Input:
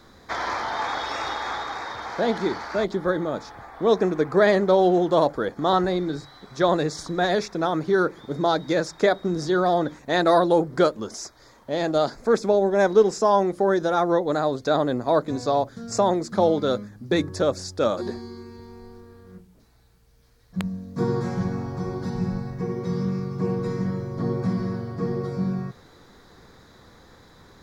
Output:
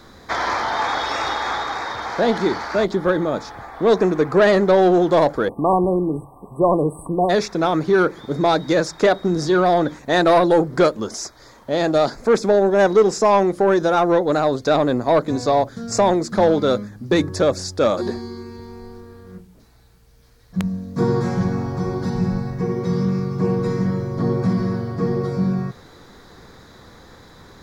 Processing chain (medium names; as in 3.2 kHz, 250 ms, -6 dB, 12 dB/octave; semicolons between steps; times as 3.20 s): saturation -13 dBFS, distortion -17 dB; spectral selection erased 5.49–7.30 s, 1.2–7.9 kHz; trim +6 dB